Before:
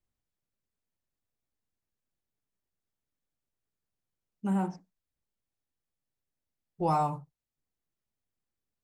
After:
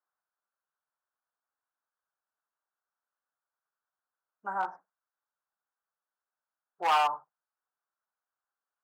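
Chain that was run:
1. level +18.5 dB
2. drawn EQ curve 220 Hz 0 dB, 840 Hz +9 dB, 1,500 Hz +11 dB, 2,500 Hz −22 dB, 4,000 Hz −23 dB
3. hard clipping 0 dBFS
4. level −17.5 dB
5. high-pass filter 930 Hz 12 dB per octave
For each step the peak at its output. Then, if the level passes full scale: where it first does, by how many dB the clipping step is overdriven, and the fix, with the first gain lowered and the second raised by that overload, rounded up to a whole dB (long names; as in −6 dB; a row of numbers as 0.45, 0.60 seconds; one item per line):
+3.0, +9.5, 0.0, −17.5, −14.0 dBFS
step 1, 9.5 dB
step 1 +8.5 dB, step 4 −7.5 dB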